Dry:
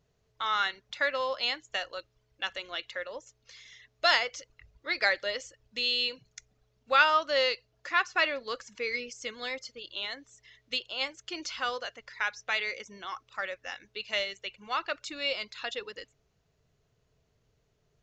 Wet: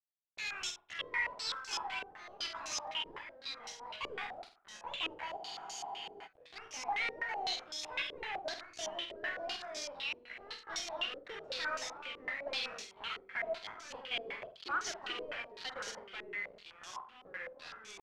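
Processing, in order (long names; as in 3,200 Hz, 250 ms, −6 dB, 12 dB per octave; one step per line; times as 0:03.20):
pitch glide at a constant tempo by +11.5 semitones ending unshifted
high-pass filter 130 Hz 12 dB per octave
log-companded quantiser 2 bits
tempo change 1×
wave folding −39 dBFS
delay with pitch and tempo change per echo 429 ms, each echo −4 semitones, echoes 3, each echo −6 dB
on a send: flutter between parallel walls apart 8.4 metres, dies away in 0.4 s
on the sum: frozen spectrum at 0:05.39, 0.86 s
low-pass on a step sequencer 7.9 Hz 430–6,200 Hz
level +1.5 dB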